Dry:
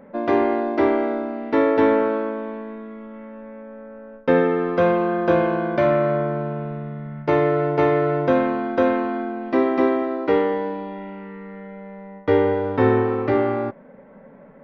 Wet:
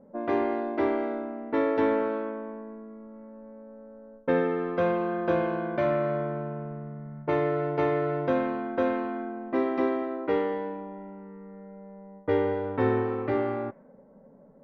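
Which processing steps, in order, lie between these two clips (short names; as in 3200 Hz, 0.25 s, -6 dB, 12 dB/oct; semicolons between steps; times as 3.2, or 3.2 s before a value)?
low-pass opened by the level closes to 680 Hz, open at -14 dBFS; gain -7.5 dB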